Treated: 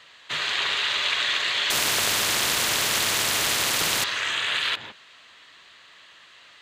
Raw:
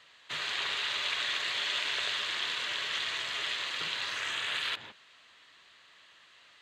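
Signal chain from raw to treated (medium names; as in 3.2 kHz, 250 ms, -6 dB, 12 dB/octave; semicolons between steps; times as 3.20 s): 1.70–4.04 s: spectrum-flattening compressor 4:1; trim +8 dB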